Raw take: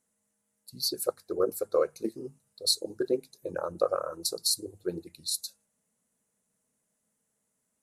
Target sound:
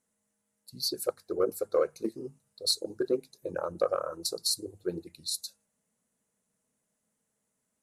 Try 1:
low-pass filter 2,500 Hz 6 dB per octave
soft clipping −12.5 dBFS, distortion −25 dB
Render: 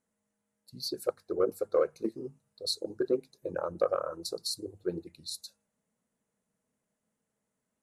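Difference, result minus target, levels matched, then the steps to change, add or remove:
8,000 Hz band −6.0 dB
change: low-pass filter 8,600 Hz 6 dB per octave

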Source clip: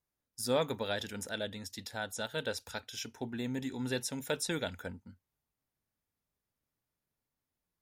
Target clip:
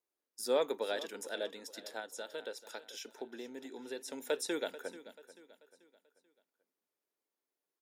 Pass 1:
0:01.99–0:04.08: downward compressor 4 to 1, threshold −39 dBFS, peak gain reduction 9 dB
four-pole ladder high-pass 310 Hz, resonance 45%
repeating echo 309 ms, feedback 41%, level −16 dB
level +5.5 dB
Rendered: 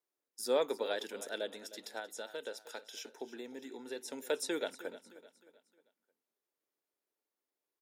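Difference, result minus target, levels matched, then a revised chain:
echo 128 ms early
0:01.99–0:04.08: downward compressor 4 to 1, threshold −39 dBFS, peak gain reduction 9 dB
four-pole ladder high-pass 310 Hz, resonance 45%
repeating echo 437 ms, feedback 41%, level −16 dB
level +5.5 dB

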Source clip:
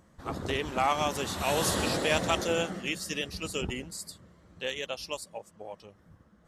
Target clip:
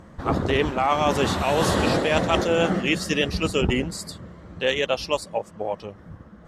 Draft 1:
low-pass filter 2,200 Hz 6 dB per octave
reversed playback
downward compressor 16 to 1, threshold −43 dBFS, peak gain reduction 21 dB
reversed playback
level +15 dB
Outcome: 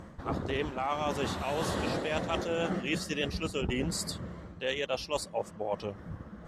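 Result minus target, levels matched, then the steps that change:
downward compressor: peak gain reduction +11 dB
change: downward compressor 16 to 1, threshold −31.5 dBFS, peak gain reduction 10 dB

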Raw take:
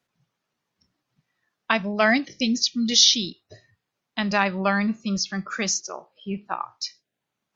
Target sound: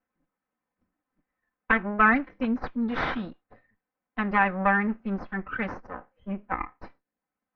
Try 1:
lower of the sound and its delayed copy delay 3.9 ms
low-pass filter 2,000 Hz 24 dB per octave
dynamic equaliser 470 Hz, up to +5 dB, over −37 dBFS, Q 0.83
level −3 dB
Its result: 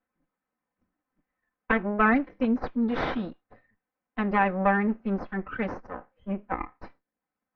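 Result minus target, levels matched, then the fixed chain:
500 Hz band +4.0 dB
lower of the sound and its delayed copy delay 3.9 ms
low-pass filter 2,000 Hz 24 dB per octave
dynamic equaliser 1,500 Hz, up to +5 dB, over −37 dBFS, Q 0.83
level −3 dB

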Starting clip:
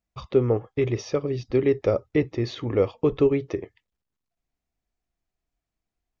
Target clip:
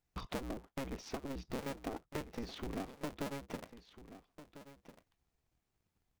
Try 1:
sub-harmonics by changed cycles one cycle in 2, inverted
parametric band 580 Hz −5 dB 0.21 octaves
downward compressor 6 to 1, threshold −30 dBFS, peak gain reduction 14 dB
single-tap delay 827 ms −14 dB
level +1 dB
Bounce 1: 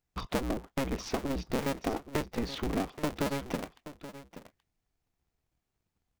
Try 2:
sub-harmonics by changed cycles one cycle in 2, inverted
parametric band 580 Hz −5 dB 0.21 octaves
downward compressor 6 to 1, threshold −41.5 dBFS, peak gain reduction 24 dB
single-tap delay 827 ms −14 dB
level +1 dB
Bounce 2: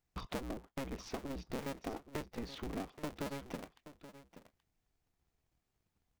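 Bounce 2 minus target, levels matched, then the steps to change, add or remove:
echo 521 ms early
change: single-tap delay 1,348 ms −14 dB

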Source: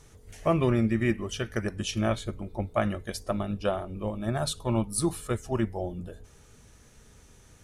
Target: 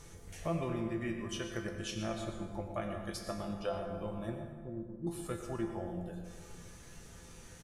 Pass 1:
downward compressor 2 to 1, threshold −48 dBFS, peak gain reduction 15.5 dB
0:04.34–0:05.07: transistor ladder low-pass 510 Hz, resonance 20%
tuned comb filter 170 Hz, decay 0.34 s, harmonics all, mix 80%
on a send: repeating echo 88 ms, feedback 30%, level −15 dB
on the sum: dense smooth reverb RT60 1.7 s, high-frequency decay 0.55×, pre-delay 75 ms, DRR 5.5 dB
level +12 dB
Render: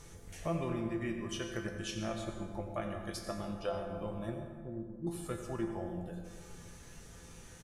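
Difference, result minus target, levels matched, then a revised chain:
echo 31 ms early
downward compressor 2 to 1, threshold −48 dBFS, peak gain reduction 15.5 dB
0:04.34–0:05.07: transistor ladder low-pass 510 Hz, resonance 20%
tuned comb filter 170 Hz, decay 0.34 s, harmonics all, mix 80%
on a send: repeating echo 119 ms, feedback 30%, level −15 dB
on the sum: dense smooth reverb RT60 1.7 s, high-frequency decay 0.55×, pre-delay 75 ms, DRR 5.5 dB
level +12 dB

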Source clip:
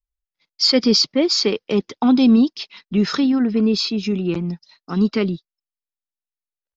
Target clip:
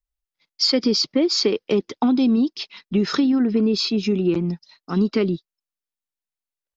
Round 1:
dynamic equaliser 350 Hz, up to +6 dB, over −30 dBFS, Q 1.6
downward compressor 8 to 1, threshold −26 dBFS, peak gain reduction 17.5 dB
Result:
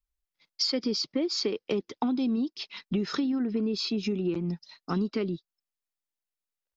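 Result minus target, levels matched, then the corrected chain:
downward compressor: peak gain reduction +9.5 dB
dynamic equaliser 350 Hz, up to +6 dB, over −30 dBFS, Q 1.6
downward compressor 8 to 1, threshold −15 dBFS, peak gain reduction 8 dB

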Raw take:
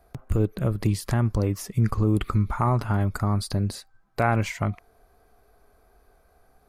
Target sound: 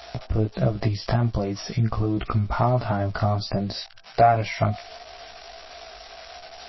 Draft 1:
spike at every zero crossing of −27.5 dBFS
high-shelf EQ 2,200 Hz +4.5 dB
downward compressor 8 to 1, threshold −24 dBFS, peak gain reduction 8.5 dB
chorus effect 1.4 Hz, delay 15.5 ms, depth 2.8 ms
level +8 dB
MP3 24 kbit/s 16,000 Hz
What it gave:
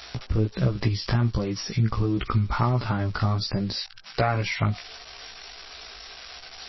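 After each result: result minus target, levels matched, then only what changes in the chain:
500 Hz band −5.0 dB; 4,000 Hz band +4.5 dB
add after downward compressor: parametric band 670 Hz +13.5 dB 0.38 octaves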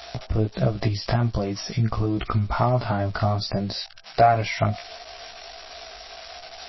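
4,000 Hz band +3.0 dB
remove: high-shelf EQ 2,200 Hz +4.5 dB

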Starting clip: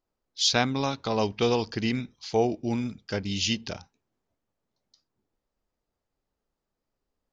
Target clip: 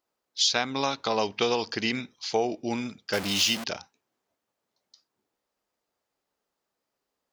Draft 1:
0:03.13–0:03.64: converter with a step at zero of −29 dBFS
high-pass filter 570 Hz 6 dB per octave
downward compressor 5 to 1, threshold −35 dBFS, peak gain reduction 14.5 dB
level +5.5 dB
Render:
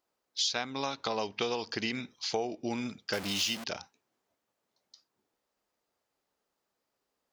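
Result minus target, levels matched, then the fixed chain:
downward compressor: peak gain reduction +7 dB
0:03.13–0:03.64: converter with a step at zero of −29 dBFS
high-pass filter 570 Hz 6 dB per octave
downward compressor 5 to 1, threshold −26 dBFS, peak gain reduction 7 dB
level +5.5 dB

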